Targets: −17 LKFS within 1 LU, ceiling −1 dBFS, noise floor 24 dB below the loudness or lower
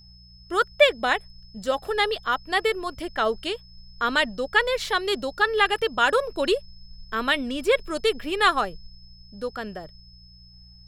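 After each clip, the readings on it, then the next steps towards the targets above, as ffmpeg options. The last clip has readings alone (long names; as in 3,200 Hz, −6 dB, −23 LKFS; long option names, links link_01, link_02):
mains hum 60 Hz; hum harmonics up to 180 Hz; level of the hum −50 dBFS; interfering tone 5,200 Hz; level of the tone −51 dBFS; integrated loudness −24.0 LKFS; sample peak −4.0 dBFS; target loudness −17.0 LKFS
→ -af "bandreject=frequency=60:width_type=h:width=4,bandreject=frequency=120:width_type=h:width=4,bandreject=frequency=180:width_type=h:width=4"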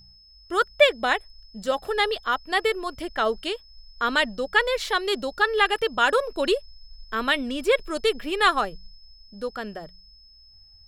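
mains hum none found; interfering tone 5,200 Hz; level of the tone −51 dBFS
→ -af "bandreject=frequency=5200:width=30"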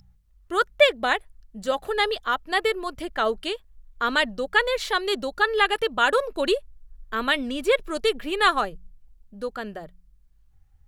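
interfering tone none found; integrated loudness −24.0 LKFS; sample peak −4.0 dBFS; target loudness −17.0 LKFS
→ -af "volume=7dB,alimiter=limit=-1dB:level=0:latency=1"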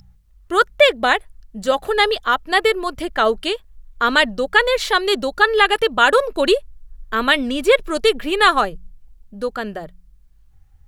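integrated loudness −17.5 LKFS; sample peak −1.0 dBFS; background noise floor −51 dBFS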